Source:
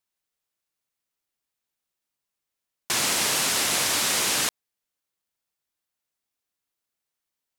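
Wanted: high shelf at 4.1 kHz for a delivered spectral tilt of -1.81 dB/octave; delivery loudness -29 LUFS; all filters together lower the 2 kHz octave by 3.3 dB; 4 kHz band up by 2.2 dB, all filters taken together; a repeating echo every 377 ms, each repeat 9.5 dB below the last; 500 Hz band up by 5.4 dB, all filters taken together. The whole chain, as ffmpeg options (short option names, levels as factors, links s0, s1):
-af "equalizer=f=500:t=o:g=7,equalizer=f=2000:t=o:g=-5.5,equalizer=f=4000:t=o:g=8,highshelf=f=4100:g=-6.5,aecho=1:1:377|754|1131|1508:0.335|0.111|0.0365|0.012,volume=0.473"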